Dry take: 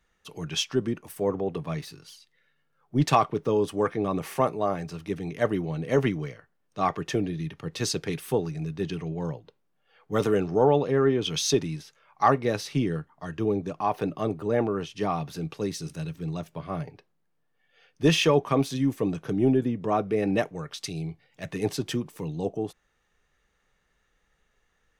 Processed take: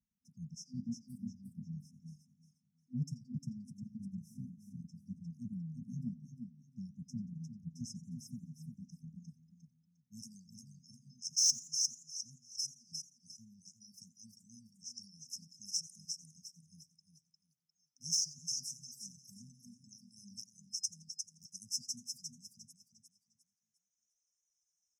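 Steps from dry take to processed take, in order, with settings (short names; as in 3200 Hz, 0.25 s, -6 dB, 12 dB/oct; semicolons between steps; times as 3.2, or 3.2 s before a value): 12.43–12.92 level quantiser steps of 19 dB; band-pass sweep 700 Hz -> 4500 Hz, 7.88–11.11; on a send: feedback echo 0.353 s, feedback 35%, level -5 dB; on the sum: reverb removal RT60 1.9 s; FFT band-reject 250–5100 Hz; soft clip -30 dBFS, distortion -18 dB; warbling echo 87 ms, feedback 41%, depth 162 cents, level -19 dB; gain +10 dB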